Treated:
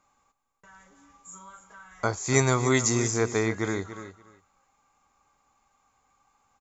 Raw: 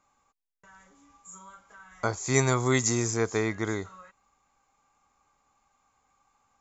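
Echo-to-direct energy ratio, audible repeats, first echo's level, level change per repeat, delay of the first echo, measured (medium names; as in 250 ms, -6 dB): -12.5 dB, 2, -12.5 dB, -16.0 dB, 288 ms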